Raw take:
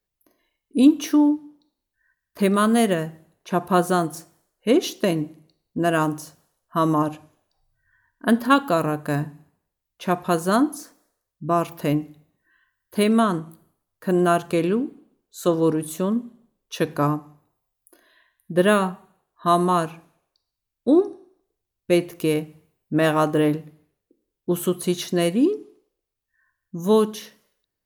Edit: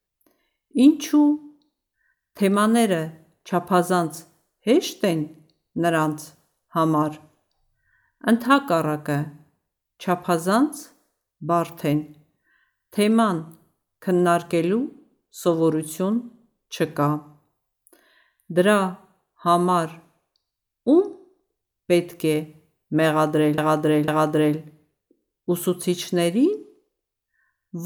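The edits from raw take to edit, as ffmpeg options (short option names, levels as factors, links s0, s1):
-filter_complex "[0:a]asplit=3[s0][s1][s2];[s0]atrim=end=23.582[s3];[s1]atrim=start=23.078:end=23.582[s4];[s2]atrim=start=23.078[s5];[s3][s4]acrossfade=d=0.004:c1=hsin:c2=hsin[s6];[s6][s5]acrossfade=d=0.004:c1=hsin:c2=hsin"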